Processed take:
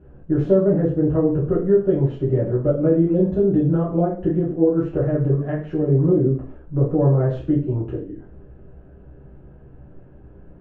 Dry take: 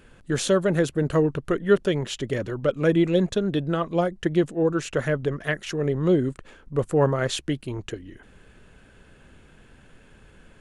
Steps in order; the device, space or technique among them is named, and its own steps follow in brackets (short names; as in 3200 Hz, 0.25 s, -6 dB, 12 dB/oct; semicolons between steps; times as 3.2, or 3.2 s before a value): television next door (compressor 5:1, threshold -21 dBFS, peak gain reduction 8.5 dB; LPF 560 Hz 12 dB/oct; reverb RT60 0.45 s, pre-delay 4 ms, DRR -8 dB)